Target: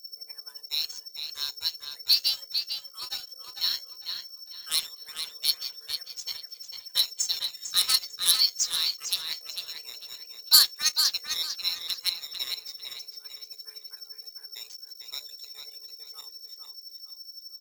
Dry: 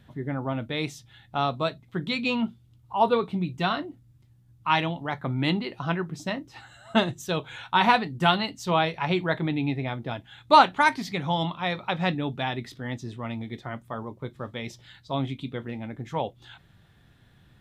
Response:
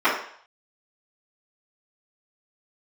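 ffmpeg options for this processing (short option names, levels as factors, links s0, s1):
-filter_complex "[0:a]afftdn=nr=24:nf=-36,acrossover=split=110[s0][s1];[s0]acompressor=threshold=0.002:ratio=6[s2];[s1]bandpass=f=4300:t=q:w=1.1:csg=0[s3];[s2][s3]amix=inputs=2:normalize=0,crystalizer=i=6.5:c=0,aeval=exprs='val(0)+0.0141*sin(2*PI*5100*n/s)':c=same,afreqshift=320,asoftclip=type=hard:threshold=0.251,aexciter=amount=13.4:drive=1.6:freq=4500,flanger=delay=4.8:depth=6.4:regen=73:speed=0.17:shape=triangular,aeval=exprs='sgn(val(0))*max(abs(val(0))-0.0473,0)':c=same,asplit=2[s4][s5];[s5]adelay=449,lowpass=f=5000:p=1,volume=0.562,asplit=2[s6][s7];[s7]adelay=449,lowpass=f=5000:p=1,volume=0.32,asplit=2[s8][s9];[s9]adelay=449,lowpass=f=5000:p=1,volume=0.32,asplit=2[s10][s11];[s11]adelay=449,lowpass=f=5000:p=1,volume=0.32[s12];[s6][s8][s10][s12]amix=inputs=4:normalize=0[s13];[s4][s13]amix=inputs=2:normalize=0,volume=0.631"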